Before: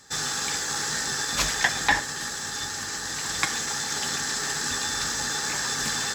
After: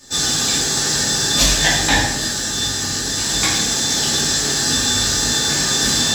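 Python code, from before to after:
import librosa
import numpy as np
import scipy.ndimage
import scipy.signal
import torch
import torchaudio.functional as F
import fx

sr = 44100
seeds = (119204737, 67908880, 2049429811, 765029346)

y = fx.band_shelf(x, sr, hz=1400.0, db=-8.5, octaves=1.7)
y = fx.room_shoebox(y, sr, seeds[0], volume_m3=240.0, walls='mixed', distance_m=2.6)
y = F.gain(torch.from_numpy(y), 4.0).numpy()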